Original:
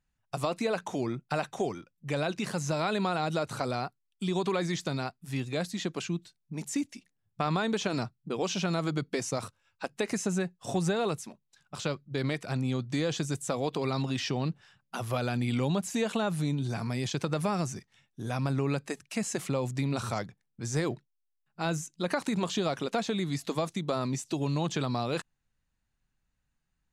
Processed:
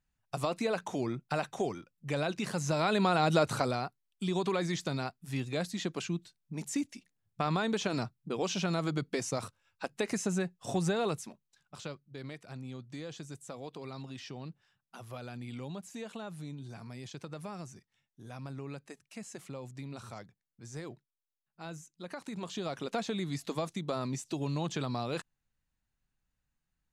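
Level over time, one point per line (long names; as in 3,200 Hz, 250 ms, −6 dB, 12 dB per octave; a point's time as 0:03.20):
0:02.51 −2 dB
0:03.46 +5 dB
0:03.80 −2 dB
0:11.28 −2 dB
0:12.13 −13 dB
0:22.13 −13 dB
0:22.94 −4 dB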